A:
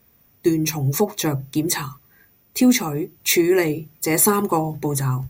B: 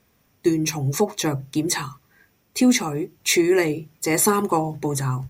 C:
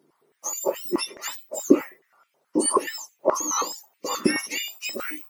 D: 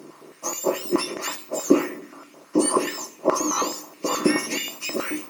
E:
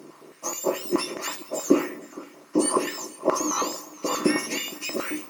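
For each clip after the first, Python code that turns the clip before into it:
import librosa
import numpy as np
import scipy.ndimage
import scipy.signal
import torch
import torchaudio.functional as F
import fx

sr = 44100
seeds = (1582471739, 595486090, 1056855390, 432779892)

y1 = scipy.signal.sosfilt(scipy.signal.butter(2, 10000.0, 'lowpass', fs=sr, output='sos'), x)
y1 = fx.low_shelf(y1, sr, hz=230.0, db=-3.5)
y2 = fx.octave_mirror(y1, sr, pivot_hz=1500.0)
y2 = fx.filter_held_highpass(y2, sr, hz=9.4, low_hz=320.0, high_hz=2400.0)
y2 = y2 * librosa.db_to_amplitude(-4.5)
y3 = fx.bin_compress(y2, sr, power=0.6)
y3 = fx.room_shoebox(y3, sr, seeds[0], volume_m3=2600.0, walls='furnished', distance_m=0.73)
y3 = y3 * librosa.db_to_amplitude(-2.0)
y4 = y3 + 10.0 ** (-20.5 / 20.0) * np.pad(y3, (int(465 * sr / 1000.0), 0))[:len(y3)]
y4 = y4 * librosa.db_to_amplitude(-2.0)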